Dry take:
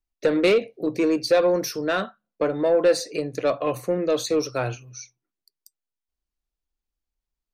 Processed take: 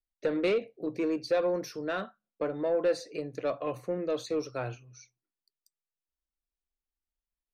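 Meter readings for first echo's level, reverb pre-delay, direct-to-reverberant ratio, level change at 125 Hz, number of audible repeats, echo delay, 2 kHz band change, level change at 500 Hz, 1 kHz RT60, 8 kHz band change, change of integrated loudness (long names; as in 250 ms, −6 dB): no echo audible, no reverb audible, no reverb audible, −8.5 dB, no echo audible, no echo audible, −9.5 dB, −8.5 dB, no reverb audible, −14.5 dB, −9.0 dB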